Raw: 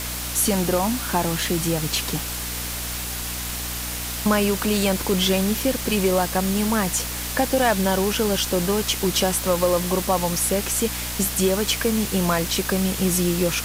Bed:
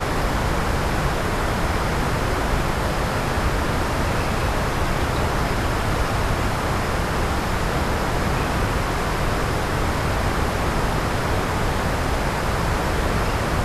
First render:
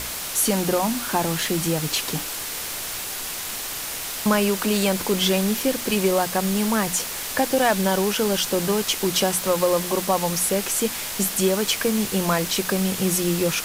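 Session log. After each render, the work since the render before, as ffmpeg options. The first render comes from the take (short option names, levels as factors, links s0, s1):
-af "bandreject=f=60:t=h:w=6,bandreject=f=120:t=h:w=6,bandreject=f=180:t=h:w=6,bandreject=f=240:t=h:w=6,bandreject=f=300:t=h:w=6"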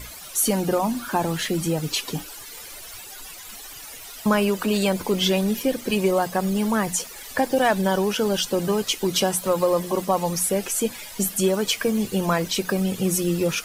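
-af "afftdn=nr=15:nf=-31"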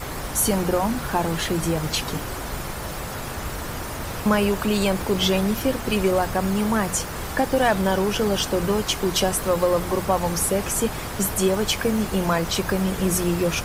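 -filter_complex "[1:a]volume=0.335[s0];[0:a][s0]amix=inputs=2:normalize=0"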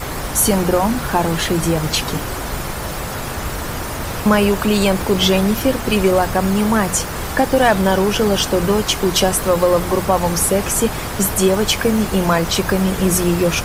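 -af "volume=2,alimiter=limit=0.708:level=0:latency=1"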